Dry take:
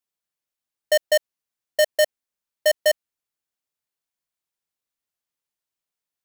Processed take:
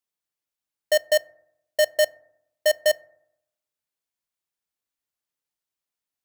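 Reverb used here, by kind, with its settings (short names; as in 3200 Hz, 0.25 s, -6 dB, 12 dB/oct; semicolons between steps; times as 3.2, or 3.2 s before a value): FDN reverb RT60 0.79 s, low-frequency decay 1.2×, high-frequency decay 0.3×, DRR 17.5 dB; gain -1.5 dB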